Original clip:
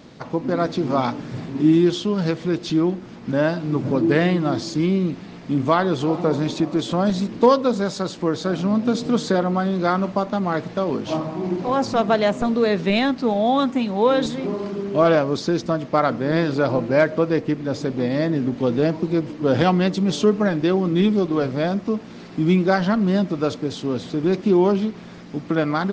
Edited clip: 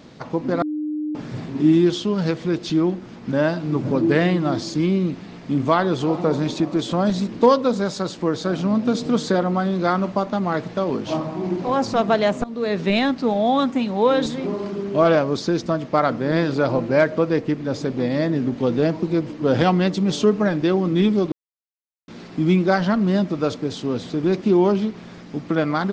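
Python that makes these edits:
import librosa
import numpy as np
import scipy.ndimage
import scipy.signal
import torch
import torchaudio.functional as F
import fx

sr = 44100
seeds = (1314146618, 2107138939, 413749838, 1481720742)

y = fx.edit(x, sr, fx.bleep(start_s=0.62, length_s=0.53, hz=303.0, db=-22.5),
    fx.fade_in_from(start_s=12.44, length_s=0.39, floor_db=-19.5),
    fx.silence(start_s=21.32, length_s=0.76), tone=tone)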